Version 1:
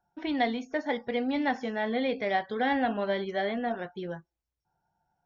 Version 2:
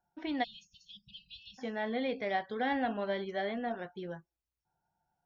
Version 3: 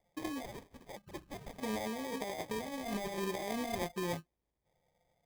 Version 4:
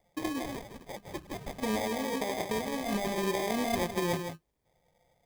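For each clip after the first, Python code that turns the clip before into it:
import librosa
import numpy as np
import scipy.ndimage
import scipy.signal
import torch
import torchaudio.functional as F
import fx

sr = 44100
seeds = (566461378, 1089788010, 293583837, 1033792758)

y1 = fx.spec_erase(x, sr, start_s=0.44, length_s=1.15, low_hz=200.0, high_hz=2500.0)
y1 = y1 * librosa.db_to_amplitude(-5.0)
y2 = fx.over_compress(y1, sr, threshold_db=-39.0, ratio=-1.0)
y2 = fx.sample_hold(y2, sr, seeds[0], rate_hz=1400.0, jitter_pct=0)
y2 = y2 * librosa.db_to_amplitude(1.0)
y3 = y2 + 10.0 ** (-7.5 / 20.0) * np.pad(y2, (int(160 * sr / 1000.0), 0))[:len(y2)]
y3 = y3 * librosa.db_to_amplitude(6.0)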